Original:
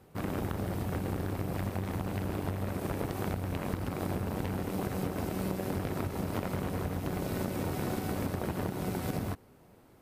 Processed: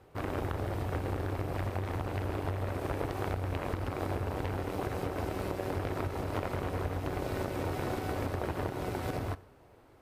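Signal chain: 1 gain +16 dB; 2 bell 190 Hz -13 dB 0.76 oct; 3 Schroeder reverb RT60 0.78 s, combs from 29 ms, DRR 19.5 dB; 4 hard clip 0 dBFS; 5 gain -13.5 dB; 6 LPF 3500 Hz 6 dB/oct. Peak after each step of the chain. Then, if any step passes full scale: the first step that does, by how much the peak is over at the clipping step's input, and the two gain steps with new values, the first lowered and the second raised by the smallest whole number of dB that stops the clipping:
-2.5, -3.5, -3.5, -3.5, -17.0, -17.5 dBFS; no overload

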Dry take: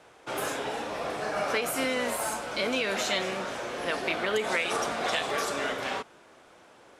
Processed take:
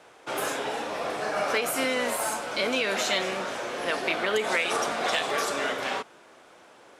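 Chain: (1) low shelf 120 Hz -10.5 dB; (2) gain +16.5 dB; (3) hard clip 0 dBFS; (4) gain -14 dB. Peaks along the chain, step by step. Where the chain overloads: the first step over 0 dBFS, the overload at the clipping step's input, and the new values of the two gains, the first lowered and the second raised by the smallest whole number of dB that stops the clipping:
-13.0, +3.5, 0.0, -14.0 dBFS; step 2, 3.5 dB; step 2 +12.5 dB, step 4 -10 dB

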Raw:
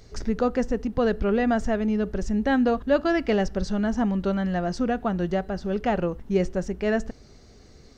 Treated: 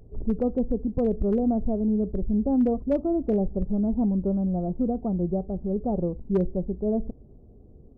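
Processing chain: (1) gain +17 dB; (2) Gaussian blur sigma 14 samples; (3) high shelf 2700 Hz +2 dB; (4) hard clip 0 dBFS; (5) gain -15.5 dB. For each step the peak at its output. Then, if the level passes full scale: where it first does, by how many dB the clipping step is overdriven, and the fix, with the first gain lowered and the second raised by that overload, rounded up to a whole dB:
+7.5, +3.5, +3.5, 0.0, -15.5 dBFS; step 1, 3.5 dB; step 1 +13 dB, step 5 -11.5 dB

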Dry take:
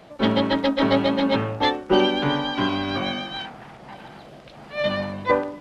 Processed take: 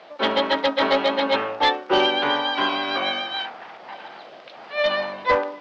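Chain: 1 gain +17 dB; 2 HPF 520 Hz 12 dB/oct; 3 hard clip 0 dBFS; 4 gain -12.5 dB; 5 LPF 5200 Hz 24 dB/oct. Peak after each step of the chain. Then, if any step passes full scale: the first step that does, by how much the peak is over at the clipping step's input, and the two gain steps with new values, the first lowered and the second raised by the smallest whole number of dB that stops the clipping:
+11.0, +8.5, 0.0, -12.5, -11.0 dBFS; step 1, 8.5 dB; step 1 +8 dB, step 4 -3.5 dB

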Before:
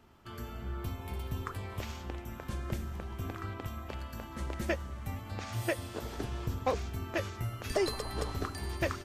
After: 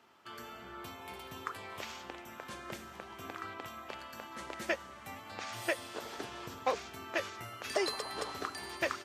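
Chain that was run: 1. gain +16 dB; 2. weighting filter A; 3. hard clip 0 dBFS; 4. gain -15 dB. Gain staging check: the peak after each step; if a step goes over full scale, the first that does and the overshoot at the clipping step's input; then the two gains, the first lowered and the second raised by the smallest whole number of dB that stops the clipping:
-1.0, -3.0, -3.0, -18.0 dBFS; no overload

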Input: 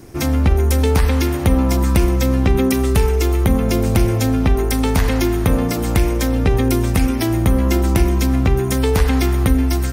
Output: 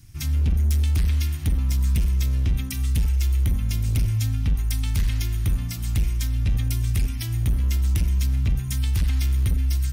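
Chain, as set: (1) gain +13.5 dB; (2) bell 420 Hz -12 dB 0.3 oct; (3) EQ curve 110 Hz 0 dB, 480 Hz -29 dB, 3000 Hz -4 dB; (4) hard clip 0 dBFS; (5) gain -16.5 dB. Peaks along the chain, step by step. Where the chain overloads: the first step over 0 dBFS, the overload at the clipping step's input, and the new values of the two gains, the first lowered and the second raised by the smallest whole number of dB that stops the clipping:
+11.5, +11.0, +8.5, 0.0, -16.5 dBFS; step 1, 8.5 dB; step 1 +4.5 dB, step 5 -7.5 dB

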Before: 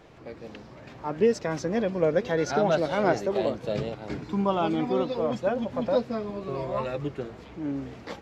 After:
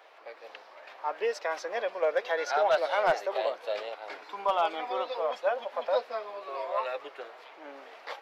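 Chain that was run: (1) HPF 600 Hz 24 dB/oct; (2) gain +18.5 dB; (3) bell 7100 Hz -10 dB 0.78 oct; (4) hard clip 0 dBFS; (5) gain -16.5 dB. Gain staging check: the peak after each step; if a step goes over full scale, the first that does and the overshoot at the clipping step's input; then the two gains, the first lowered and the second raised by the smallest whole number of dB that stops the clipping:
-13.0, +5.5, +5.5, 0.0, -16.5 dBFS; step 2, 5.5 dB; step 2 +12.5 dB, step 5 -10.5 dB

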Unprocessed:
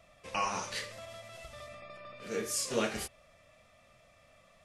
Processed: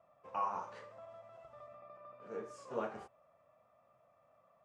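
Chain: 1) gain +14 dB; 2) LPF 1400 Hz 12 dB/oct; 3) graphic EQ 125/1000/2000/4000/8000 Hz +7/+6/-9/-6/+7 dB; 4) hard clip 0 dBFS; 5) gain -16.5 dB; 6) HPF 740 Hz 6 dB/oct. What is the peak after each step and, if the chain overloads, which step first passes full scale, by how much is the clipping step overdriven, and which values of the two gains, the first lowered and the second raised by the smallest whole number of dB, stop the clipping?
-1.5, -4.5, -3.0, -3.0, -19.5, -23.5 dBFS; no overload

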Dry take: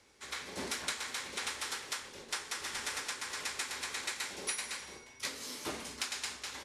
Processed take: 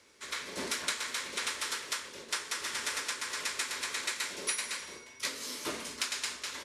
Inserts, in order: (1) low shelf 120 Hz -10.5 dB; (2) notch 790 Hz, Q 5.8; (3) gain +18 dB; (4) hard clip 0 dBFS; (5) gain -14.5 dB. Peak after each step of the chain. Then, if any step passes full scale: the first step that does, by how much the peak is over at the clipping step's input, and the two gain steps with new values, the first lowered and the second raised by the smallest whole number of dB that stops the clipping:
-20.0, -20.0, -2.0, -2.0, -16.5 dBFS; no overload

